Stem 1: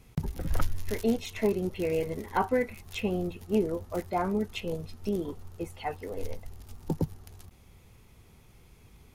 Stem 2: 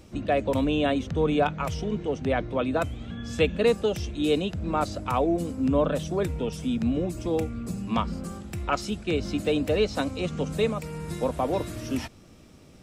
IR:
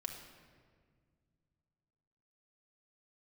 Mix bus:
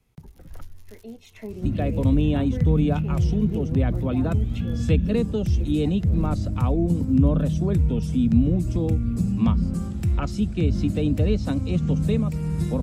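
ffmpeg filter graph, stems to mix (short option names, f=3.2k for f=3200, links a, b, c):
-filter_complex "[0:a]acrossover=split=430|3000[a][b][c];[b]acompressor=threshold=-31dB:ratio=6[d];[a][d][c]amix=inputs=3:normalize=0,volume=-2dB,afade=t=in:st=1.21:d=0.53:silence=0.316228[e];[1:a]bass=f=250:g=10,treble=f=4k:g=2,adelay=1500,volume=2.5dB[f];[e][f]amix=inputs=2:normalize=0,acrossover=split=300[g][h];[h]acompressor=threshold=-48dB:ratio=1.5[i];[g][i]amix=inputs=2:normalize=0"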